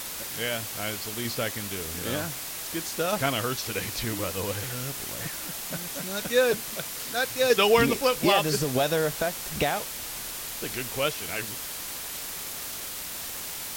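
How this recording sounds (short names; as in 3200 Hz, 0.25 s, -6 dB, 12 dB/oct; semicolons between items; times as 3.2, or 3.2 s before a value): tremolo saw down 1.6 Hz, depth 35%; a quantiser's noise floor 6-bit, dither triangular; Vorbis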